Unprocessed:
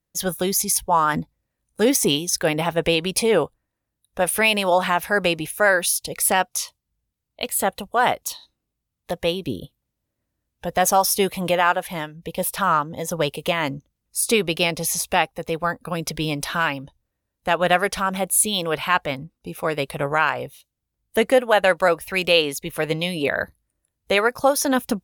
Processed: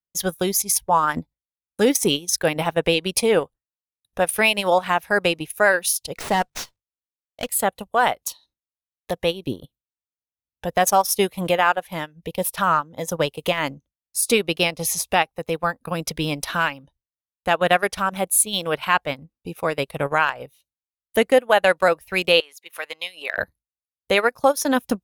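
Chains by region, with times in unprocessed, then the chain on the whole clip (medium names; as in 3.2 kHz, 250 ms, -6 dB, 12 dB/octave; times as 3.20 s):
6.17–7.48 s: CVSD coder 64 kbps + de-hum 47.86 Hz, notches 3 + sliding maximum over 3 samples
22.40–23.38 s: high-pass 1.1 kHz + treble shelf 2.2 kHz -5.5 dB + upward compressor, threshold -35 dBFS
whole clip: gate with hold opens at -45 dBFS; transient shaper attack +1 dB, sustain -12 dB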